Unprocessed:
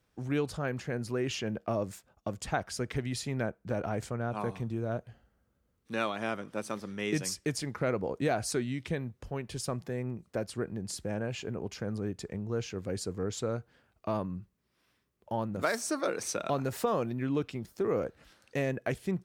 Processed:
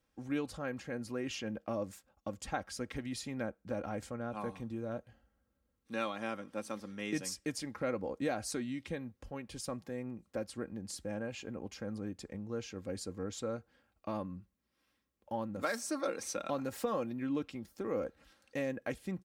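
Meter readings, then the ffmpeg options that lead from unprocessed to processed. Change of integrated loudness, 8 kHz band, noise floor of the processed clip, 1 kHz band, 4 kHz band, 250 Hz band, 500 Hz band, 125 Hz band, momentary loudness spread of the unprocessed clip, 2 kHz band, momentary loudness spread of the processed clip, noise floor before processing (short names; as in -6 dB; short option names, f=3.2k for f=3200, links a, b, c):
-5.0 dB, -5.0 dB, -80 dBFS, -5.0 dB, -5.0 dB, -4.0 dB, -5.5 dB, -10.5 dB, 7 LU, -5.5 dB, 7 LU, -75 dBFS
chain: -af "aecho=1:1:3.7:0.51,volume=-6dB"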